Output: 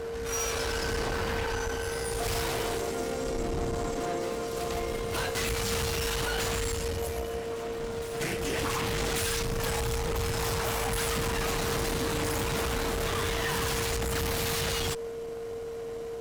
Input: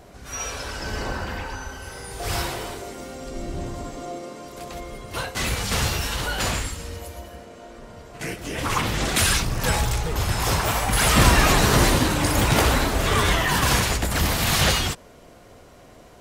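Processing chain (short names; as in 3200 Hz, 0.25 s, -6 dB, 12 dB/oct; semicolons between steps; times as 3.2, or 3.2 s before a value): compressor, threshold -25 dBFS, peak gain reduction 14 dB; tube stage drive 35 dB, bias 0.75; whine 460 Hz -41 dBFS; on a send: reverse echo 1.139 s -14.5 dB; on the sum: gain +6.5 dB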